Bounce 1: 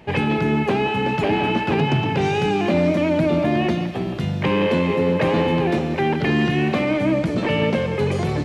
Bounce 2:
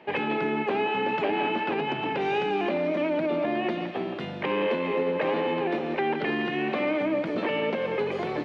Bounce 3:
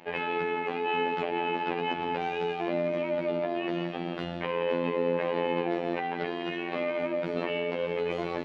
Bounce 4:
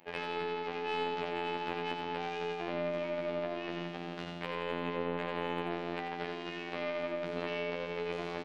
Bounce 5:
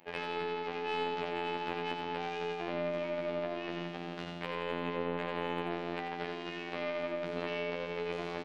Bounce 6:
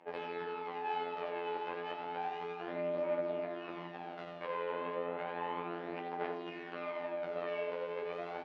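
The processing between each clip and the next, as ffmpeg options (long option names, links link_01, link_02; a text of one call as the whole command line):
ffmpeg -i in.wav -filter_complex "[0:a]alimiter=limit=-13.5dB:level=0:latency=1:release=130,acrossover=split=240 4000:gain=0.0708 1 0.0794[link_01][link_02][link_03];[link_01][link_02][link_03]amix=inputs=3:normalize=0,volume=-2dB" out.wav
ffmpeg -i in.wav -af "alimiter=limit=-22dB:level=0:latency=1:release=96,afftfilt=real='hypot(re,im)*cos(PI*b)':imag='0':win_size=2048:overlap=0.75,volume=3dB" out.wav
ffmpeg -i in.wav -af "aeval=exprs='0.237*(cos(1*acos(clip(val(0)/0.237,-1,1)))-cos(1*PI/2))+0.0596*(cos(2*acos(clip(val(0)/0.237,-1,1)))-cos(2*PI/2))+0.00531*(cos(7*acos(clip(val(0)/0.237,-1,1)))-cos(7*PI/2))+0.00168*(cos(8*acos(clip(val(0)/0.237,-1,1)))-cos(8*PI/2))':channel_layout=same,crystalizer=i=1:c=0,aecho=1:1:88:0.531,volume=-8.5dB" out.wav
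ffmpeg -i in.wav -af anull out.wav
ffmpeg -i in.wav -af "aphaser=in_gain=1:out_gain=1:delay=2.1:decay=0.42:speed=0.32:type=triangular,bandpass=frequency=750:width_type=q:width=0.65:csg=0,flanger=delay=6.4:depth=4.7:regen=-62:speed=1.4:shape=sinusoidal,volume=3dB" out.wav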